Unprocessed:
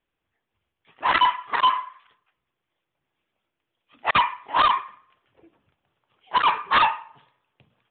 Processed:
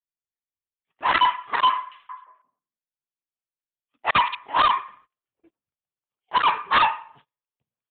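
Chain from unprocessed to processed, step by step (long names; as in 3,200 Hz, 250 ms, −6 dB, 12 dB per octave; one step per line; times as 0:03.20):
noise gate −52 dBFS, range −28 dB
0:01.74–0:04.35: echo through a band-pass that steps 175 ms, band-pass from 3,500 Hz, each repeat −1.4 octaves, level −4.5 dB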